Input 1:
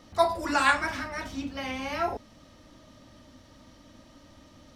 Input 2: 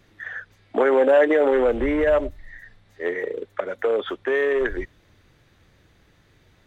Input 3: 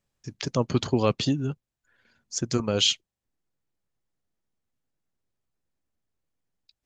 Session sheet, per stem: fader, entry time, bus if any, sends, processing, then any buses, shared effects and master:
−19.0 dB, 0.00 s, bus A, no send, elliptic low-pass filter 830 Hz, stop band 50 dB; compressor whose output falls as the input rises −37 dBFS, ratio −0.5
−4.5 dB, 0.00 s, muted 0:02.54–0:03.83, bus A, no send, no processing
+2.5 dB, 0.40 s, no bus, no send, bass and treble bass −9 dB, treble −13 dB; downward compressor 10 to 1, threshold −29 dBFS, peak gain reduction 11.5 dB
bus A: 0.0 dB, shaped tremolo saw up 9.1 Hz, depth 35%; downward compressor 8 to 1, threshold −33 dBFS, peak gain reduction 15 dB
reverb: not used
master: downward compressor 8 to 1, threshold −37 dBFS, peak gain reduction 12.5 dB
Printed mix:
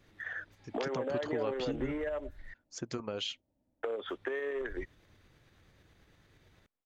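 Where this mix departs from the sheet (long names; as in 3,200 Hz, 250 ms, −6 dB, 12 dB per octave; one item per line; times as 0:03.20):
stem 1 −19.0 dB → −26.5 dB
stem 3 +2.5 dB → −4.0 dB
master: missing downward compressor 8 to 1, threshold −37 dBFS, peak gain reduction 12.5 dB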